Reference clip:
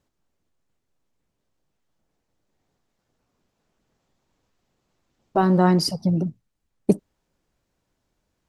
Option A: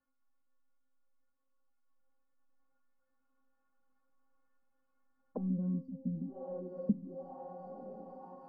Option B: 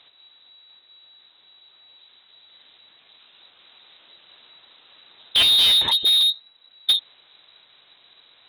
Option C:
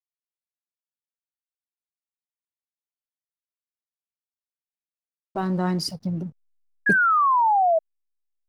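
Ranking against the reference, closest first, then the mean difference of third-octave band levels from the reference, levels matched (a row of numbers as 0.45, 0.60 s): C, A, B; 2.5, 9.5, 17.5 dB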